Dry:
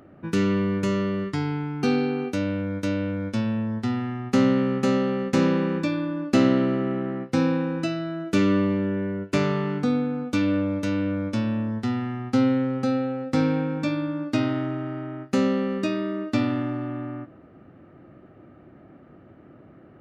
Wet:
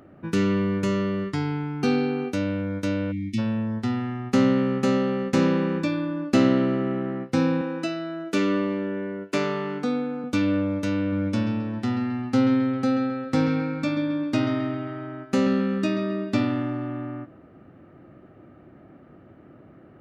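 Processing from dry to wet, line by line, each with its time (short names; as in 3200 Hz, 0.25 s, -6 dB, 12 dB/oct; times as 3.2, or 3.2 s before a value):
3.12–3.39 spectral delete 350–1800 Hz
7.61–10.24 HPF 250 Hz
10.99–16.46 analogue delay 0.133 s, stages 4096, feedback 47%, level -9 dB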